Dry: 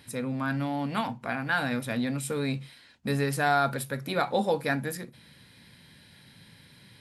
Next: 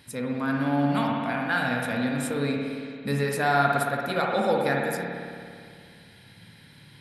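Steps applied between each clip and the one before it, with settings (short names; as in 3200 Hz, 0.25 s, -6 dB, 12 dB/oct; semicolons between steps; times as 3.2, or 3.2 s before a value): spring tank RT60 2.2 s, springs 56 ms, chirp 80 ms, DRR -0.5 dB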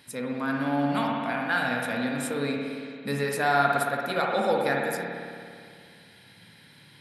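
HPF 220 Hz 6 dB/oct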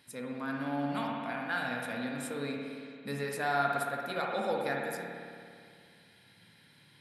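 resonator 350 Hz, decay 0.69 s, mix 60%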